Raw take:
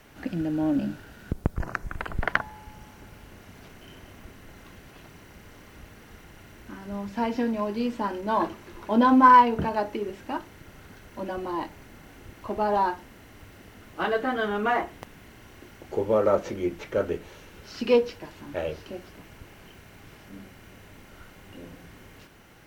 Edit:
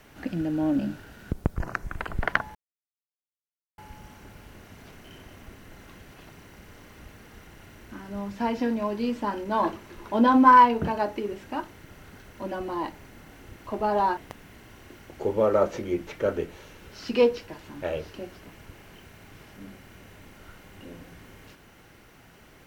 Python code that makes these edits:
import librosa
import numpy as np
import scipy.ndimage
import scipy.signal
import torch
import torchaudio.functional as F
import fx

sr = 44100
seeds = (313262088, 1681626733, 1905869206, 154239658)

y = fx.edit(x, sr, fx.insert_silence(at_s=2.55, length_s=1.23),
    fx.cut(start_s=12.94, length_s=1.95), tone=tone)